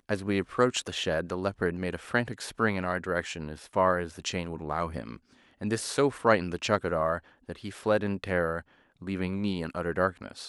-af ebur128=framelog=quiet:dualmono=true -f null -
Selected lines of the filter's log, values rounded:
Integrated loudness:
  I:         -26.6 LUFS
  Threshold: -36.9 LUFS
Loudness range:
  LRA:         2.6 LU
  Threshold: -46.9 LUFS
  LRA low:   -28.3 LUFS
  LRA high:  -25.7 LUFS